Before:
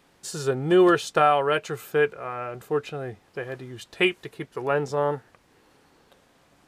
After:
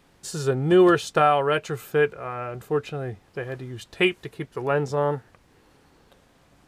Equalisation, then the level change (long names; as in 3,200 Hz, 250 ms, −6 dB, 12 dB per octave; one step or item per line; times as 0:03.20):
low-shelf EQ 140 Hz +9.5 dB
0.0 dB